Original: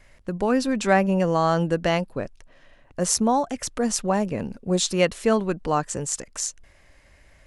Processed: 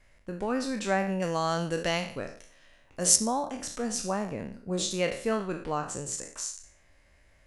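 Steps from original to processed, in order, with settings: spectral sustain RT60 0.51 s; 1.22–3.16 s: treble shelf 2.5 kHz +11.5 dB; trim -9 dB

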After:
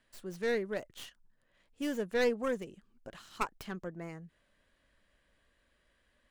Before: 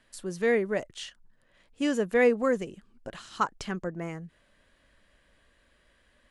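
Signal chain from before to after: tracing distortion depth 0.17 ms; trim -7.5 dB

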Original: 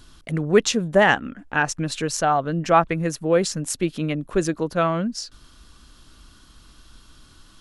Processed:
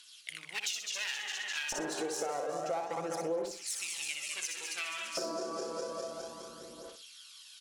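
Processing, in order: backward echo that repeats 102 ms, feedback 83%, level -8.5 dB; one-sided clip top -23 dBFS, bottom -7.5 dBFS; tone controls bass +3 dB, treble +14 dB; LFO high-pass square 0.29 Hz 490–2600 Hz; tilt EQ -3 dB/octave; feedback delay 62 ms, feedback 26%, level -5.5 dB; phaser 0.29 Hz, delay 3.3 ms, feedback 42%; compression 6:1, threshold -29 dBFS, peak gain reduction 22.5 dB; trim -5 dB

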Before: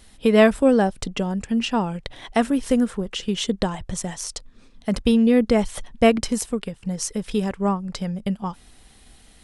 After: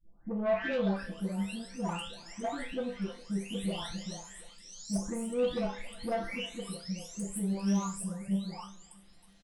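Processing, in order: delay that grows with frequency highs late, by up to 966 ms; saturation -17 dBFS, distortion -13 dB; chord resonator C2 major, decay 0.32 s; feedback delay 322 ms, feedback 48%, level -22.5 dB; trim +2.5 dB

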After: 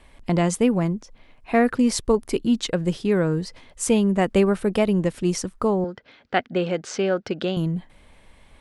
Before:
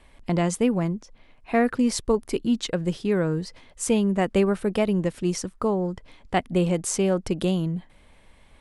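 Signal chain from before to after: 5.84–7.57 s: cabinet simulation 170–5200 Hz, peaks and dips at 180 Hz -6 dB, 320 Hz -4 dB, 1 kHz -7 dB, 1.5 kHz +8 dB; trim +2.5 dB

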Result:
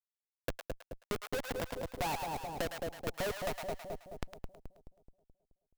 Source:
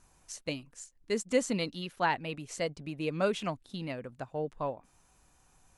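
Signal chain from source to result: rattle on loud lows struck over -39 dBFS, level -32 dBFS; band-pass sweep 710 Hz -> 2.3 kHz, 3.45–4.67 s; Schmitt trigger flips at -36 dBFS; bass shelf 270 Hz -4.5 dB; on a send: two-band feedback delay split 700 Hz, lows 214 ms, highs 107 ms, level -7 dB; on the sum: compression, threshold -51 dBFS, peak gain reduction 9.5 dB; sampling jitter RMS 0.022 ms; trim +17.5 dB

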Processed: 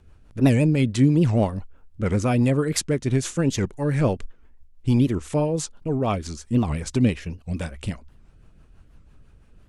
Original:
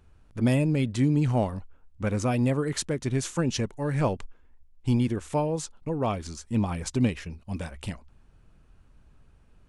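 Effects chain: rotary cabinet horn 6 Hz; warped record 78 rpm, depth 250 cents; trim +6.5 dB

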